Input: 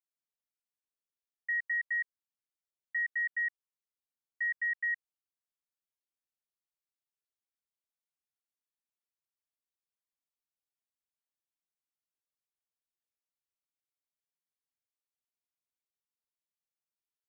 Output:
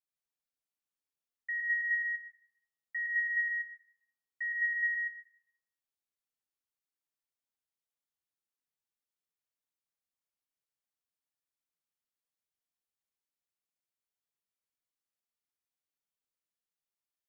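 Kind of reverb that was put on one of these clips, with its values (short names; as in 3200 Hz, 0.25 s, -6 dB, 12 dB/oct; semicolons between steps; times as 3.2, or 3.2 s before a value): plate-style reverb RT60 0.71 s, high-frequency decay 0.8×, pre-delay 90 ms, DRR 2.5 dB; gain -3.5 dB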